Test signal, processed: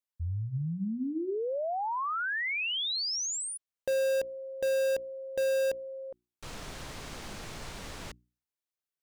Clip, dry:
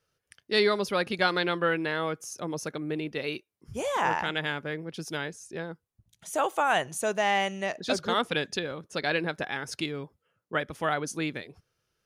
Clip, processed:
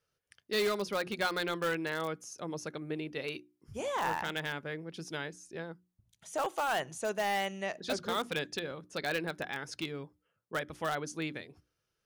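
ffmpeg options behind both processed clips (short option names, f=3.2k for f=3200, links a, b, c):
-filter_complex "[0:a]bandreject=f=60:t=h:w=6,bandreject=f=120:t=h:w=6,bandreject=f=180:t=h:w=6,bandreject=f=240:t=h:w=6,bandreject=f=300:t=h:w=6,bandreject=f=360:t=h:w=6,acrossover=split=9100[a][b];[b]acompressor=threshold=-59dB:ratio=4:attack=1:release=60[c];[a][c]amix=inputs=2:normalize=0,asplit=2[d][e];[e]aeval=exprs='(mod(8.91*val(0)+1,2)-1)/8.91':c=same,volume=-10dB[f];[d][f]amix=inputs=2:normalize=0,volume=-7.5dB"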